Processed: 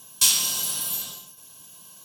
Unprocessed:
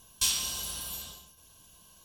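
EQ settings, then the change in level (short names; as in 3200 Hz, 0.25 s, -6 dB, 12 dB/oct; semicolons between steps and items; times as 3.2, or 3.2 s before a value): HPF 120 Hz 24 dB/oct; high shelf 7500 Hz +7.5 dB; +6.0 dB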